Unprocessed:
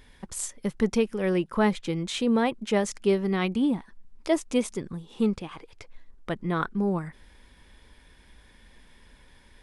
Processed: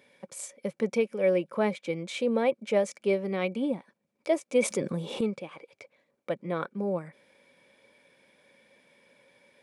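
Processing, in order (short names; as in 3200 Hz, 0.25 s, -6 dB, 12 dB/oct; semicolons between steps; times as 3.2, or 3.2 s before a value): HPF 140 Hz 24 dB/oct; small resonant body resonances 550/2300 Hz, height 16 dB, ringing for 35 ms; 4.55–5.21 fast leveller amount 50%; gain -7 dB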